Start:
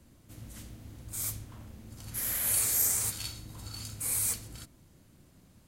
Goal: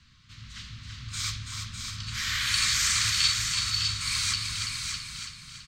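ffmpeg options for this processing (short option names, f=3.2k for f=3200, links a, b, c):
-filter_complex "[0:a]equalizer=f=11k:w=5.3:g=-12.5,asplit=2[a][b];[b]aecho=0:1:332|664|996|1328|1660:0.501|0.21|0.0884|0.0371|0.0156[c];[a][c]amix=inputs=2:normalize=0,dynaudnorm=f=410:g=3:m=4dB,firequalizer=gain_entry='entry(160,0);entry(320,-18);entry(750,-23);entry(1100,7);entry(4100,14);entry(11000,-20)':delay=0.05:min_phase=1,asplit=2[d][e];[e]aecho=0:1:604:0.501[f];[d][f]amix=inputs=2:normalize=0"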